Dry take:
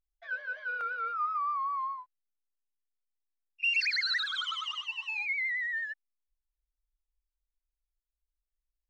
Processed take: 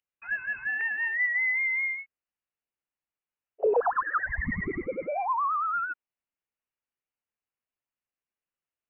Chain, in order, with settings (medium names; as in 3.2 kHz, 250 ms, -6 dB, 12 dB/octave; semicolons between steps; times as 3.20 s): steep high-pass 180 Hz; frequency inversion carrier 3.2 kHz; trim +5 dB